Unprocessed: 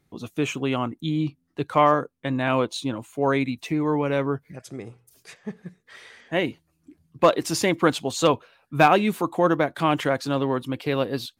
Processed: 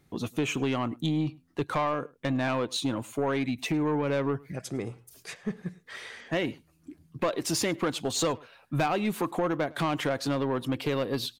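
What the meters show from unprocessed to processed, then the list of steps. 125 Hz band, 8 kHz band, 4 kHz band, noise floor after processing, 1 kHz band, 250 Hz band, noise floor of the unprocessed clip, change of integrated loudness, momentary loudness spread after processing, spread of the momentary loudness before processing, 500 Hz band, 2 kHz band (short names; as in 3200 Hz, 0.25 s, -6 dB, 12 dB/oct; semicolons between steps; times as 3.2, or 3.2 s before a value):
-3.5 dB, -0.5 dB, -2.5 dB, -64 dBFS, -9.0 dB, -4.0 dB, -70 dBFS, -6.0 dB, 10 LU, 14 LU, -6.5 dB, -6.0 dB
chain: compressor 4:1, threshold -27 dBFS, peak gain reduction 13 dB; soft clip -24 dBFS, distortion -14 dB; outdoor echo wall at 18 m, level -24 dB; gain +4 dB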